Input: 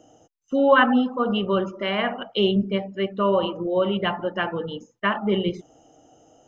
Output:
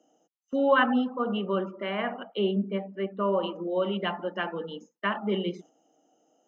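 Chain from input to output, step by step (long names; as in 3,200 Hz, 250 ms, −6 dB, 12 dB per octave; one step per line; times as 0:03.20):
Butterworth high-pass 170 Hz 48 dB per octave
noise gate −44 dBFS, range −7 dB
0:01.04–0:03.42: low-pass filter 3,100 Hz → 1,900 Hz 12 dB per octave
level −5.5 dB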